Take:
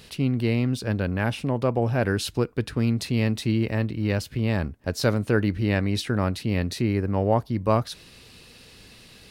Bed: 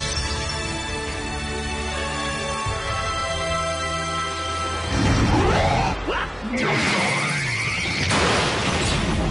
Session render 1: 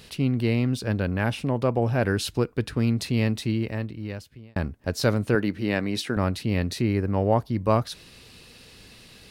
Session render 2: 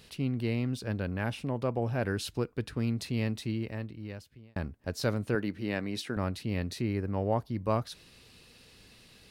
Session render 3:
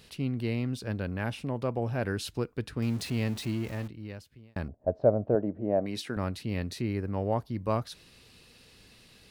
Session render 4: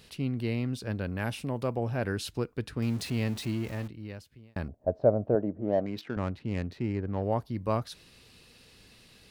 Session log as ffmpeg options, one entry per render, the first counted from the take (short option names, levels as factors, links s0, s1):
-filter_complex "[0:a]asettb=1/sr,asplit=3[s0][s1][s2];[s0]atrim=end=5.354[s3];[s1]atrim=start=5.35:end=6.17,asetpts=PTS-STARTPTS,afade=t=in:d=0.004:c=qsin,afade=t=out:st=0.816:d=0.004:c=qsin,highpass=170[s4];[s2]atrim=start=6.166[s5];[s3][s4]acrossfade=d=0.004:c1=hsin:c2=qsin[s6];[s6][s5]acrossfade=d=0.004:c1=qsin:c2=hsin,asplit=2[s7][s8];[s7]atrim=end=4.56,asetpts=PTS-STARTPTS,afade=t=out:st=3.22:d=1.34[s9];[s8]atrim=start=4.56,asetpts=PTS-STARTPTS,afade=t=in:d=0.004:c=hsin[s10];[s9][s10]concat=n=2:v=0:a=1"
-af "volume=0.422"
-filter_complex "[0:a]asettb=1/sr,asplit=3[s0][s1][s2];[s0]atrim=end=2.824[s3];[s1]atrim=start=2.82:end=3.88,asetpts=PTS-STARTPTS,afade=t=in:d=0.004:c=qsin,afade=t=out:st=1.056:d=0.004:c=qsin,aeval=exprs='val(0)+0.5*0.01*sgn(val(0))':c=same[s4];[s2]atrim=start=3.876[s5];[s3][s4]acrossfade=d=0.004:c1=hsin:c2=qsin[s6];[s6][s5]acrossfade=d=0.004:c1=qsin:c2=hsin,asettb=1/sr,asplit=3[s7][s8][s9];[s7]atrim=end=4.684[s10];[s8]atrim=start=4.68:end=5.86,asetpts=PTS-STARTPTS,afade=t=in:d=0.004:c=qsin,afade=t=out:st=1.176:d=0.004:c=qsin,lowpass=f=650:t=q:w=6.1[s11];[s9]atrim=start=5.856[s12];[s10][s11]acrossfade=d=0.004:c1=hsin:c2=qsin[s13];[s13][s12]acrossfade=d=0.004:c1=qsin:c2=hsin"
-filter_complex "[0:a]asettb=1/sr,asplit=3[s0][s1][s2];[s0]atrim=end=1.174[s3];[s1]atrim=start=1.17:end=1.76,asetpts=PTS-STARTPTS,afade=t=in:d=0.004:c=qsin,afade=t=out:st=0.586:d=0.004:c=qsin,highshelf=f=6200:g=9[s4];[s2]atrim=start=1.756[s5];[s3][s4]acrossfade=d=0.004:c1=hsin:c2=qsin[s6];[s6][s5]acrossfade=d=0.004:c1=qsin:c2=hsin,asettb=1/sr,asplit=3[s7][s8][s9];[s7]atrim=end=5.524[s10];[s8]atrim=start=5.52:end=7.23,asetpts=PTS-STARTPTS,afade=t=in:d=0.004:c=qsin,afade=t=out:st=1.706:d=0.004:c=qsin,adynamicsmooth=sensitivity=5:basefreq=1500[s11];[s9]atrim=start=7.226[s12];[s10][s11]acrossfade=d=0.004:c1=hsin:c2=qsin[s13];[s13][s12]acrossfade=d=0.004:c1=qsin:c2=hsin"